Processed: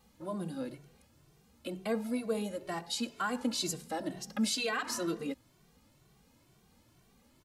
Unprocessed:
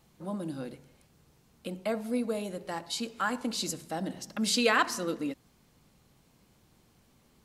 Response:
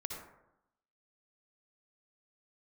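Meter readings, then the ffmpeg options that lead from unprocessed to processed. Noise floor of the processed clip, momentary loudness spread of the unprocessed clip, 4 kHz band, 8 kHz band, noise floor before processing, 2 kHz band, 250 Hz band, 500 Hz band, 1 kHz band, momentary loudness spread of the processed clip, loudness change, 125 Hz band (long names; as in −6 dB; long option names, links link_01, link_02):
−67 dBFS, 14 LU, −3.5 dB, −2.5 dB, −65 dBFS, −6.5 dB, −2.0 dB, −3.5 dB, −5.5 dB, 10 LU, −4.0 dB, −2.5 dB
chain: -filter_complex "[0:a]alimiter=limit=-21.5dB:level=0:latency=1:release=84,asplit=2[link_01][link_02];[link_02]adelay=2.1,afreqshift=2.1[link_03];[link_01][link_03]amix=inputs=2:normalize=1,volume=2dB"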